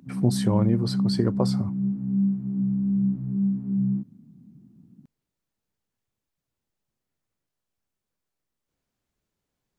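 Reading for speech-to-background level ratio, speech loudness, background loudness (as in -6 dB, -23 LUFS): -0.5 dB, -26.5 LUFS, -26.0 LUFS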